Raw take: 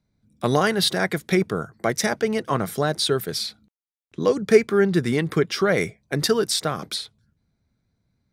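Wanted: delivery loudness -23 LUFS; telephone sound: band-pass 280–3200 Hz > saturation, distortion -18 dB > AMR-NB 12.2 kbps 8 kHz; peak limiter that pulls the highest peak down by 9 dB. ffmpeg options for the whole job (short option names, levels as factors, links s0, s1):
-af "alimiter=limit=0.251:level=0:latency=1,highpass=280,lowpass=3200,asoftclip=threshold=0.158,volume=1.88" -ar 8000 -c:a libopencore_amrnb -b:a 12200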